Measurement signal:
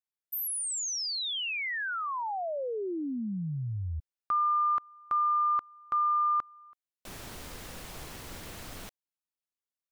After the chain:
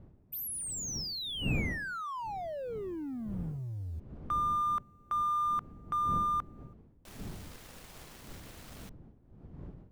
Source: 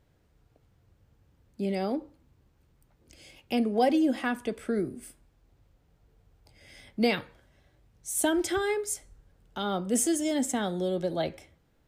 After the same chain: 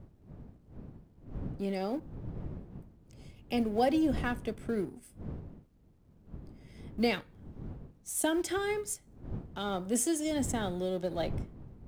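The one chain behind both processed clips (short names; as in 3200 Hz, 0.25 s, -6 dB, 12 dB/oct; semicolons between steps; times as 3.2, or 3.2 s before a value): G.711 law mismatch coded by A; wind noise 180 Hz -41 dBFS; gain -3 dB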